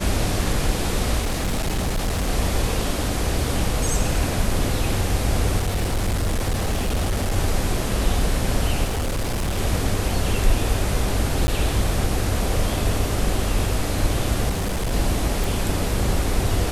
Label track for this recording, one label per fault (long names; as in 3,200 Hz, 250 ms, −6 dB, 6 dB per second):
1.210000	2.290000	clipping −19 dBFS
5.580000	7.370000	clipping −18 dBFS
8.840000	9.590000	clipping −20 dBFS
11.470000	11.480000	drop-out 10 ms
14.490000	14.930000	clipping −20 dBFS
15.440000	15.440000	click